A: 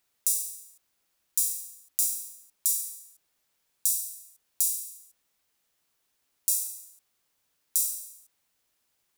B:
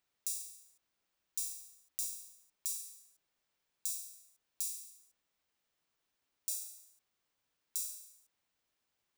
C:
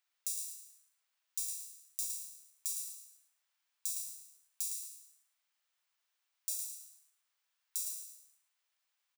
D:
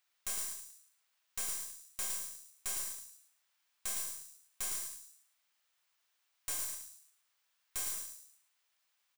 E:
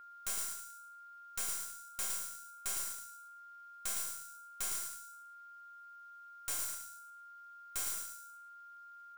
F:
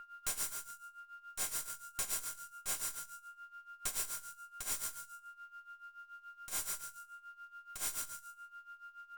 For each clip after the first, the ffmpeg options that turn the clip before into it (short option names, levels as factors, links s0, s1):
-af "equalizer=f=13000:w=0.5:g=-10.5,volume=0.531"
-filter_complex "[0:a]highpass=950,asplit=2[s0][s1];[s1]asplit=4[s2][s3][s4][s5];[s2]adelay=110,afreqshift=74,volume=0.531[s6];[s3]adelay=220,afreqshift=148,volume=0.164[s7];[s4]adelay=330,afreqshift=222,volume=0.0513[s8];[s5]adelay=440,afreqshift=296,volume=0.0158[s9];[s6][s7][s8][s9]amix=inputs=4:normalize=0[s10];[s0][s10]amix=inputs=2:normalize=0"
-af "aeval=exprs='(tanh(100*val(0)+0.6)-tanh(0.6))/100':c=same,volume=2.37"
-af "aeval=exprs='val(0)+0.00282*sin(2*PI*1400*n/s)':c=same"
-af "aeval=exprs='(tanh(89.1*val(0)+0.65)-tanh(0.65))/89.1':c=same,tremolo=f=7:d=0.83,volume=2.51" -ar 48000 -c:a libopus -b:a 48k